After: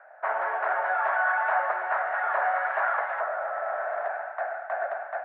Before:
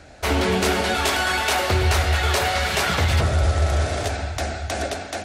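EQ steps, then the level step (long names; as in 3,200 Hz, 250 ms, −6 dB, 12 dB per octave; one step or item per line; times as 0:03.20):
elliptic band-pass filter 630–1,700 Hz, stop band 60 dB
0.0 dB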